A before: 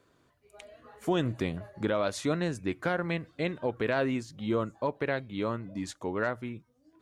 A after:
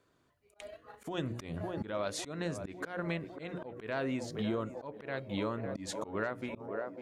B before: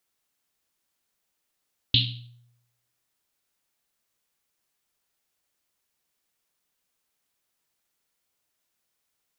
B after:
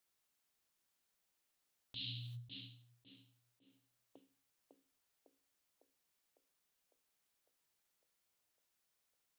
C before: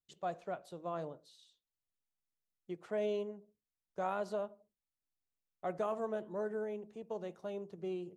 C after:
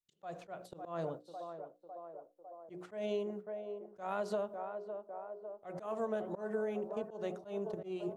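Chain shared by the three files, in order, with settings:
noise gate −50 dBFS, range −13 dB
mains-hum notches 60/120/180/240/300/360/420/480/540 Hz
feedback echo with a band-pass in the loop 553 ms, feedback 72%, band-pass 580 Hz, level −13.5 dB
downward compressor 6 to 1, threshold −40 dBFS
volume swells 144 ms
level +8 dB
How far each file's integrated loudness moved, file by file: −6.0, −22.5, −1.0 LU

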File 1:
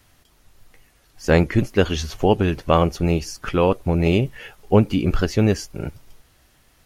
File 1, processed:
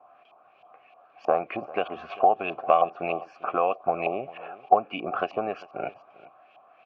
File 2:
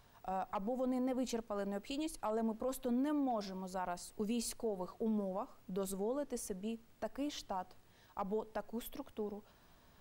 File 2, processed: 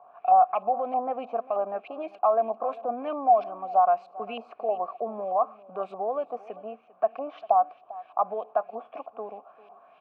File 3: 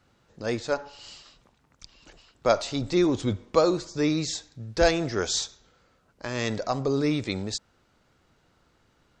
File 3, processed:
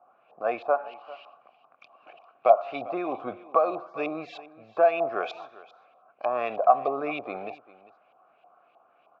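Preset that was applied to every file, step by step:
high-pass filter 150 Hz 12 dB per octave
auto-filter low-pass saw up 3.2 Hz 840–3,000 Hz
downward compressor 6 to 1, threshold −22 dBFS
formant filter a
parametric band 650 Hz +3 dB 0.42 octaves
single-tap delay 397 ms −19 dB
loudness normalisation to −27 LKFS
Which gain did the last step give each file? +13.0, +18.5, +13.0 decibels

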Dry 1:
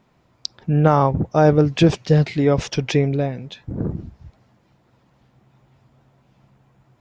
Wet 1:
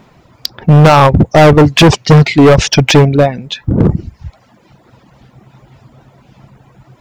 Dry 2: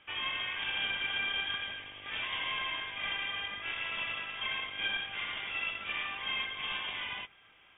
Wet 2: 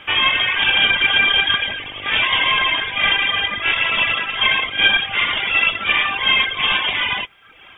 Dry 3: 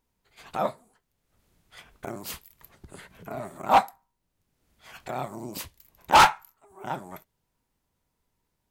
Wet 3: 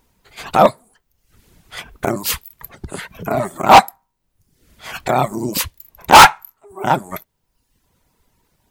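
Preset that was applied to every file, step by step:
reverb reduction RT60 0.84 s
hard clipping −19 dBFS
normalise the peak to −2 dBFS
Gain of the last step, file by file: +17.0, +20.5, +17.0 decibels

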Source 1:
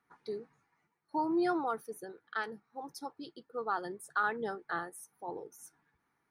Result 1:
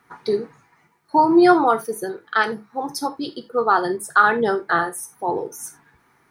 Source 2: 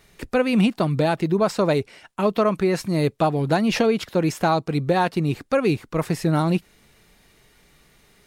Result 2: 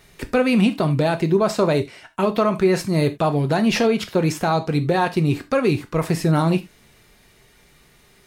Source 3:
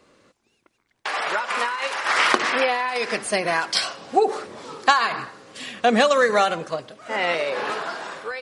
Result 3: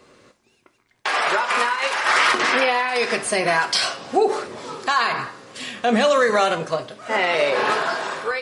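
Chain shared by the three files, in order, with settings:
in parallel at −1.5 dB: speech leveller within 5 dB 2 s
on the sum: brickwall limiter −7 dBFS
reverb whose tail is shaped and stops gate 110 ms falling, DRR 7.5 dB
loudness normalisation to −20 LKFS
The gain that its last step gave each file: +10.5, −3.0, −1.5 decibels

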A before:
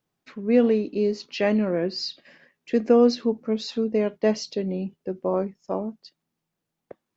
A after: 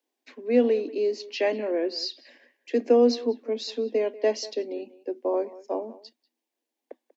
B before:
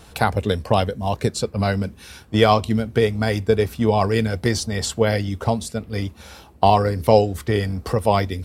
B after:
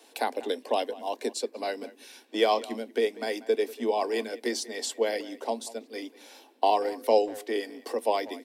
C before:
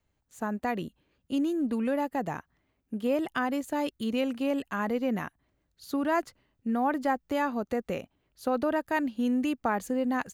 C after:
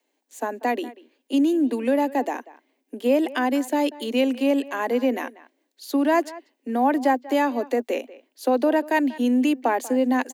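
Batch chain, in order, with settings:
Butterworth high-pass 240 Hz 96 dB per octave
parametric band 1,300 Hz −13.5 dB 0.34 octaves
far-end echo of a speakerphone 190 ms, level −18 dB
normalise the peak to −9 dBFS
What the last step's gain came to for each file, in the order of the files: −0.5, −6.5, +8.0 decibels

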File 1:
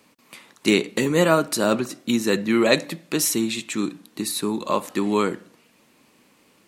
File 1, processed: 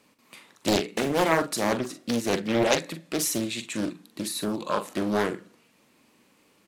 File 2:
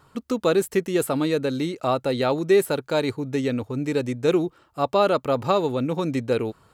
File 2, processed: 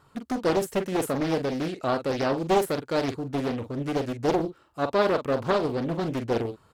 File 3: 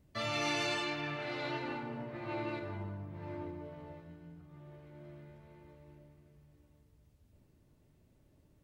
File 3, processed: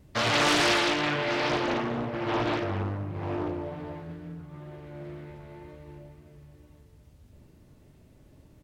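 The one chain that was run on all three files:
tape wow and flutter 19 cents
double-tracking delay 43 ms −9 dB
highs frequency-modulated by the lows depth 0.69 ms
loudness normalisation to −27 LKFS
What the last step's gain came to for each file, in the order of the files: −4.5, −3.5, +11.0 decibels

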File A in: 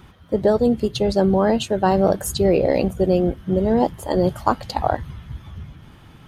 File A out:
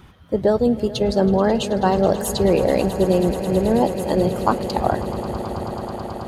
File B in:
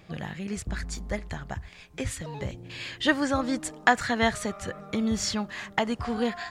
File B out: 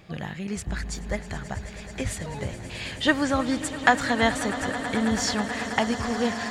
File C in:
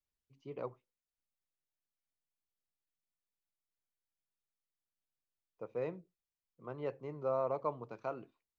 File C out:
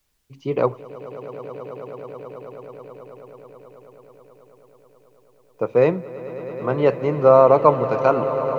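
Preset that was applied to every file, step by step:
echo that builds up and dies away 108 ms, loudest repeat 8, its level −17.5 dB
normalise the peak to −1.5 dBFS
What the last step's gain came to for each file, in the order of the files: −0.5, +2.0, +22.0 decibels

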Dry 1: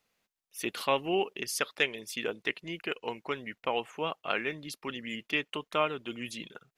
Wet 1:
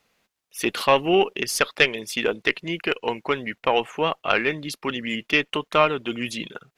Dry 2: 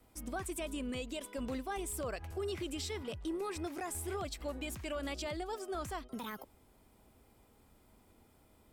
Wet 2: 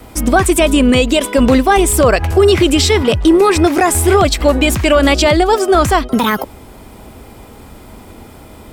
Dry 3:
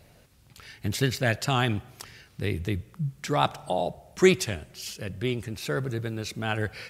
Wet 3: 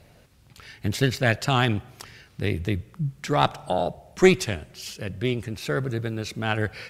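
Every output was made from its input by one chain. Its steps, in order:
harmonic generator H 2 −15 dB, 6 −28 dB, 8 −44 dB, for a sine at −5.5 dBFS
high-shelf EQ 6,200 Hz −5 dB
normalise the peak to −1.5 dBFS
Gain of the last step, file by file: +10.5, +29.0, +2.5 decibels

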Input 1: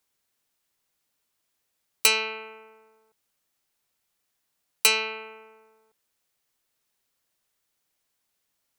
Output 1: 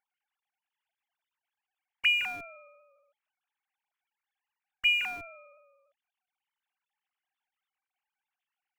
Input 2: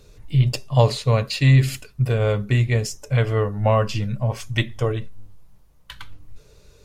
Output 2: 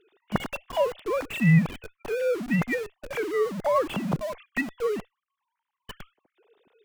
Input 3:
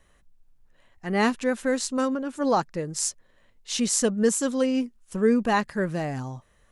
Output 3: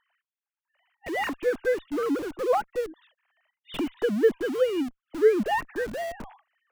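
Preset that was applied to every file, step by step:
three sine waves on the formant tracks
in parallel at −9.5 dB: comparator with hysteresis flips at −33 dBFS
on the sum: loudness normalisation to −27 LKFS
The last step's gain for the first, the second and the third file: −4.5, −8.0, −3.0 decibels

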